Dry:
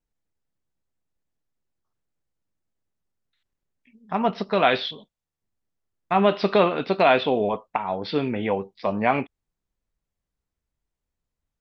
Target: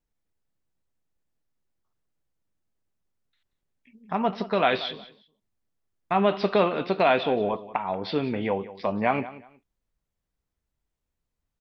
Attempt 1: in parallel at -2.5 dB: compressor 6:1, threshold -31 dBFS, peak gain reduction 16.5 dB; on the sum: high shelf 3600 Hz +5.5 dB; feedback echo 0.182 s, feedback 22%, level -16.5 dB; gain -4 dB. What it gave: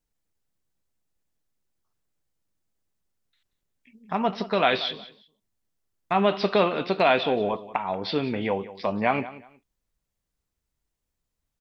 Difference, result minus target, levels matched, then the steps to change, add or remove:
8000 Hz band +5.0 dB
change: high shelf 3600 Hz -2 dB

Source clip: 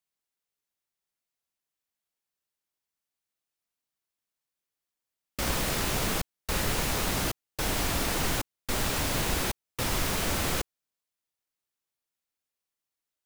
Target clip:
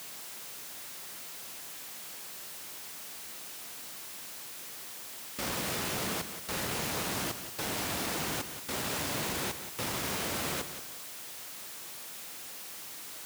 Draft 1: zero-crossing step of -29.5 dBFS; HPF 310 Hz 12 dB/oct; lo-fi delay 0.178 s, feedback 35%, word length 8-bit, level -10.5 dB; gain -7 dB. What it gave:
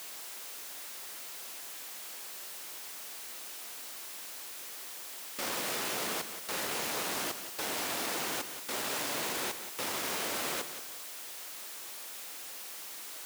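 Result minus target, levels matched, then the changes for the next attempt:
125 Hz band -11.5 dB
change: HPF 120 Hz 12 dB/oct

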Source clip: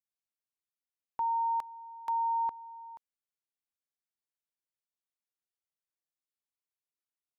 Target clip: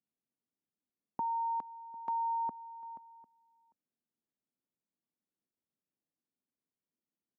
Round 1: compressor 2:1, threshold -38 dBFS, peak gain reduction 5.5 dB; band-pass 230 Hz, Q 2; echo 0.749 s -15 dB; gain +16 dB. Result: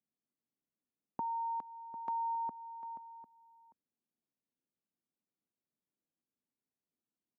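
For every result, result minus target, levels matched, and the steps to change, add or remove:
echo-to-direct +7.5 dB; compressor: peak gain reduction +3 dB
change: echo 0.749 s -22.5 dB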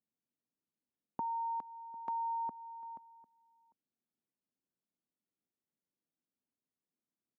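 compressor: peak gain reduction +3 dB
change: compressor 2:1, threshold -32 dBFS, peak gain reduction 2.5 dB

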